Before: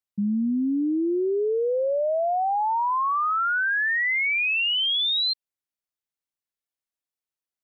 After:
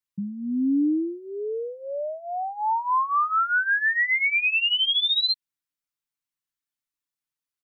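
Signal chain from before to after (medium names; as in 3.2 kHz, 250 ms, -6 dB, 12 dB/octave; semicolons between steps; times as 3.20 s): high-order bell 530 Hz -8.5 dB 1.3 oct; comb 6.8 ms, depth 72%; trim -1 dB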